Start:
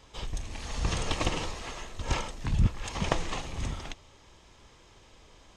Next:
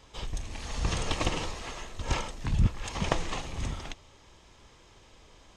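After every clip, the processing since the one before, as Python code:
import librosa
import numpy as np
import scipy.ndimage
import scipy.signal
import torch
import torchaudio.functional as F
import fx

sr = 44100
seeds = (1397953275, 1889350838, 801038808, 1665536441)

y = x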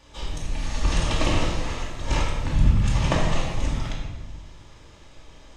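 y = fx.room_shoebox(x, sr, seeds[0], volume_m3=720.0, walls='mixed', distance_m=2.5)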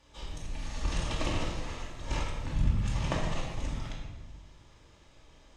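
y = fx.cheby_harmonics(x, sr, harmonics=(2,), levels_db=(-19,), full_scale_db=-6.0)
y = y * 10.0 ** (-9.0 / 20.0)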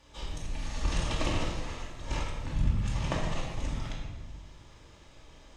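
y = fx.rider(x, sr, range_db=4, speed_s=2.0)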